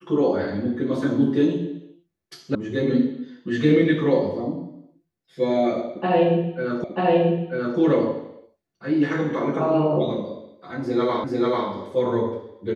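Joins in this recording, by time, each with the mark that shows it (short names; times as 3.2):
2.55 sound cut off
6.84 repeat of the last 0.94 s
11.24 repeat of the last 0.44 s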